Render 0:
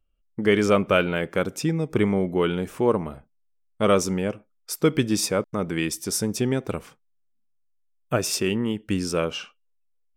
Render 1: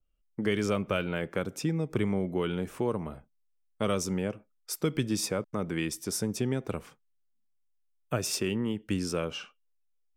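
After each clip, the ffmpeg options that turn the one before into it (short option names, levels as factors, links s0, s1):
-filter_complex "[0:a]acrossover=split=170|3000[s0][s1][s2];[s1]acompressor=threshold=0.0631:ratio=3[s3];[s0][s3][s2]amix=inputs=3:normalize=0,adynamicequalizer=threshold=0.00891:dfrequency=2400:dqfactor=0.7:tfrequency=2400:tqfactor=0.7:attack=5:release=100:ratio=0.375:range=2:mode=cutabove:tftype=highshelf,volume=0.631"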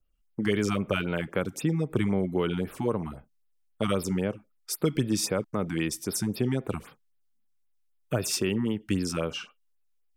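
-af "afftfilt=real='re*(1-between(b*sr/1024,450*pow(7800/450,0.5+0.5*sin(2*PI*3.8*pts/sr))/1.41,450*pow(7800/450,0.5+0.5*sin(2*PI*3.8*pts/sr))*1.41))':imag='im*(1-between(b*sr/1024,450*pow(7800/450,0.5+0.5*sin(2*PI*3.8*pts/sr))/1.41,450*pow(7800/450,0.5+0.5*sin(2*PI*3.8*pts/sr))*1.41))':win_size=1024:overlap=0.75,volume=1.41"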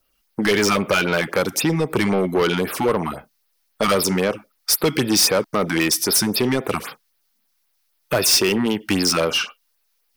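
-filter_complex "[0:a]asplit=2[s0][s1];[s1]highpass=f=720:p=1,volume=12.6,asoftclip=type=tanh:threshold=0.282[s2];[s0][s2]amix=inputs=2:normalize=0,lowpass=f=6400:p=1,volume=0.501,aexciter=amount=2.1:drive=0.9:freq=4300,volume=1.33"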